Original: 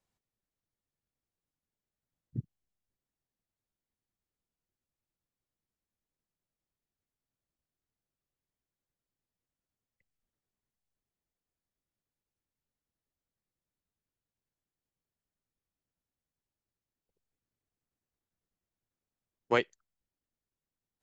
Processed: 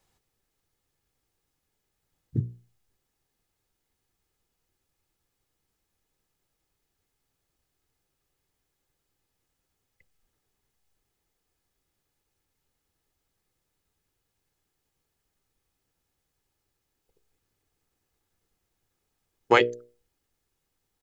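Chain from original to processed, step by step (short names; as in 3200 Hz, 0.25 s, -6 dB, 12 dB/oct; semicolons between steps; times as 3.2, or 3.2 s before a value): notches 60/120/180/240/300/360/420/480/540/600 Hz; comb 2.4 ms, depth 33%; in parallel at 0 dB: compressor, threshold -35 dBFS, peak gain reduction 12.5 dB; on the sum: gain +7 dB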